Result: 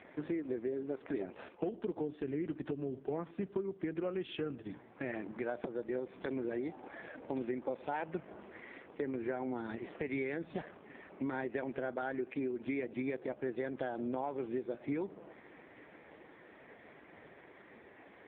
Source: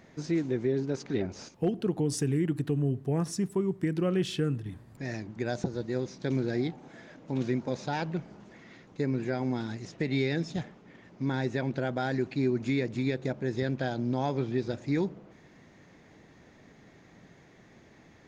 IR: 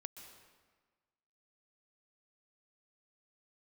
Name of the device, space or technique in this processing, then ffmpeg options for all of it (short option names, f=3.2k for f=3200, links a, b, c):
voicemail: -filter_complex "[0:a]asplit=3[a][b][c];[a]afade=t=out:st=9.9:d=0.02[d];[b]adynamicequalizer=threshold=0.001:dfrequency=1400:dqfactor=5.5:tfrequency=1400:tqfactor=5.5:attack=5:release=100:ratio=0.375:range=2.5:mode=boostabove:tftype=bell,afade=t=in:st=9.9:d=0.02,afade=t=out:st=10.63:d=0.02[e];[c]afade=t=in:st=10.63:d=0.02[f];[d][e][f]amix=inputs=3:normalize=0,highpass=360,lowpass=2.8k,acompressor=threshold=-41dB:ratio=6,volume=7.5dB" -ar 8000 -c:a libopencore_amrnb -b:a 4750